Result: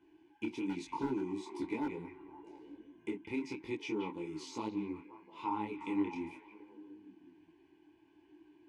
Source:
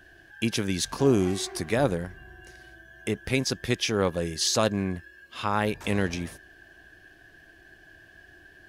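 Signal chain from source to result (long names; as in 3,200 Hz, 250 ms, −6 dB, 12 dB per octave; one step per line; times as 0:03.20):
octave-band graphic EQ 250/1,000/8,000 Hz +11/+5/+9 dB
downward compressor 3 to 1, threshold −21 dBFS, peak gain reduction 9.5 dB
formant filter u
echo through a band-pass that steps 177 ms, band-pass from 2,600 Hz, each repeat −0.7 octaves, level −6 dB
hard clipping −24.5 dBFS, distortion −22 dB
convolution reverb RT60 0.20 s, pre-delay 23 ms, DRR 20.5 dB
micro pitch shift up and down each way 37 cents
level +3.5 dB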